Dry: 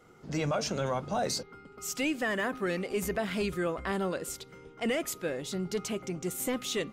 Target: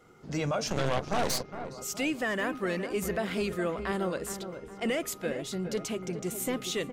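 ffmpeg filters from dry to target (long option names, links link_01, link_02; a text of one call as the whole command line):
ffmpeg -i in.wav -filter_complex "[0:a]asplit=2[link_01][link_02];[link_02]adelay=414,lowpass=frequency=1400:poles=1,volume=-9dB,asplit=2[link_03][link_04];[link_04]adelay=414,lowpass=frequency=1400:poles=1,volume=0.52,asplit=2[link_05][link_06];[link_06]adelay=414,lowpass=frequency=1400:poles=1,volume=0.52,asplit=2[link_07][link_08];[link_08]adelay=414,lowpass=frequency=1400:poles=1,volume=0.52,asplit=2[link_09][link_10];[link_10]adelay=414,lowpass=frequency=1400:poles=1,volume=0.52,asplit=2[link_11][link_12];[link_12]adelay=414,lowpass=frequency=1400:poles=1,volume=0.52[link_13];[link_01][link_03][link_05][link_07][link_09][link_11][link_13]amix=inputs=7:normalize=0,asplit=3[link_14][link_15][link_16];[link_14]afade=type=out:start_time=0.67:duration=0.02[link_17];[link_15]aeval=exprs='0.106*(cos(1*acos(clip(val(0)/0.106,-1,1)))-cos(1*PI/2))+0.0335*(cos(6*acos(clip(val(0)/0.106,-1,1)))-cos(6*PI/2))+0.00668*(cos(8*acos(clip(val(0)/0.106,-1,1)))-cos(8*PI/2))':channel_layout=same,afade=type=in:start_time=0.67:duration=0.02,afade=type=out:start_time=1.69:duration=0.02[link_18];[link_16]afade=type=in:start_time=1.69:duration=0.02[link_19];[link_17][link_18][link_19]amix=inputs=3:normalize=0" out.wav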